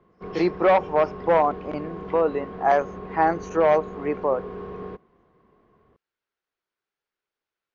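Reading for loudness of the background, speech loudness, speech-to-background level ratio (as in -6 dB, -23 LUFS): -37.0 LUFS, -23.0 LUFS, 14.0 dB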